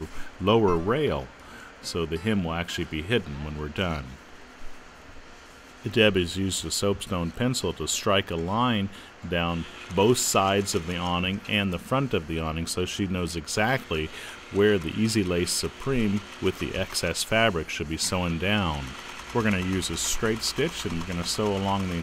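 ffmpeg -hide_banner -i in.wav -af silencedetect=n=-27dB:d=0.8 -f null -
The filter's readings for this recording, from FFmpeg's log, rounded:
silence_start: 4.67
silence_end: 5.86 | silence_duration: 1.19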